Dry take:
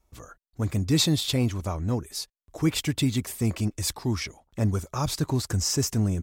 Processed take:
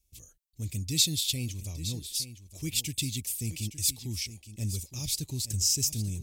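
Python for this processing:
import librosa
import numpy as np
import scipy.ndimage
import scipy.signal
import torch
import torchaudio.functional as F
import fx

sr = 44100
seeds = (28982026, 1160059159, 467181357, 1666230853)

y = fx.curve_eq(x, sr, hz=(100.0, 410.0, 1400.0, 2500.0, 10000.0), db=(0, -10, -25, 3, 11))
y = y + 10.0 ** (-13.0 / 20.0) * np.pad(y, (int(865 * sr / 1000.0), 0))[:len(y)]
y = y * librosa.db_to_amplitude(-6.5)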